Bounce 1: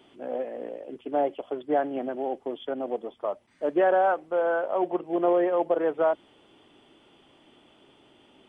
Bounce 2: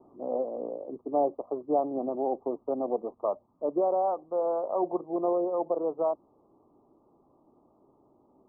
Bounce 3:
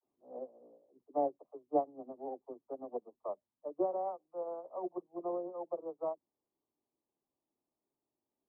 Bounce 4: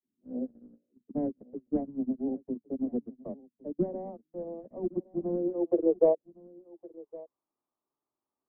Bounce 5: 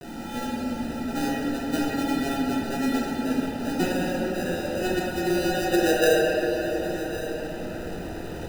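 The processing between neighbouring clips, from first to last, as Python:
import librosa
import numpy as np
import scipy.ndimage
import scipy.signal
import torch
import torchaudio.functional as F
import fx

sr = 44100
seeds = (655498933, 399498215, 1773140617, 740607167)

y1 = scipy.signal.sosfilt(scipy.signal.butter(16, 1200.0, 'lowpass', fs=sr, output='sos'), x)
y1 = fx.rider(y1, sr, range_db=3, speed_s=0.5)
y1 = y1 * 10.0 ** (-2.0 / 20.0)
y2 = fx.dispersion(y1, sr, late='lows', ms=56.0, hz=350.0)
y2 = fx.upward_expand(y2, sr, threshold_db=-38.0, expansion=2.5)
y2 = y2 * 10.0 ** (-3.5 / 20.0)
y3 = fx.leveller(y2, sr, passes=3)
y3 = fx.filter_sweep_lowpass(y3, sr, from_hz=230.0, to_hz=1200.0, start_s=5.28, end_s=7.19, q=4.2)
y3 = y3 + 10.0 ** (-21.5 / 20.0) * np.pad(y3, (int(1112 * sr / 1000.0), 0))[:len(y3)]
y3 = y3 * 10.0 ** (2.0 / 20.0)
y4 = y3 + 0.5 * 10.0 ** (-30.0 / 20.0) * np.sign(y3)
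y4 = fx.sample_hold(y4, sr, seeds[0], rate_hz=1100.0, jitter_pct=0)
y4 = fx.room_shoebox(y4, sr, seeds[1], volume_m3=200.0, walls='hard', distance_m=0.79)
y4 = y4 * 10.0 ** (-2.5 / 20.0)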